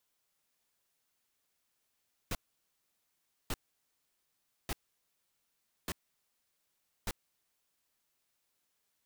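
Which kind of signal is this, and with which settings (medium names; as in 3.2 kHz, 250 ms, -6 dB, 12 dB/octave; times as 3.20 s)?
noise bursts pink, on 0.04 s, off 1.15 s, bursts 5, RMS -35 dBFS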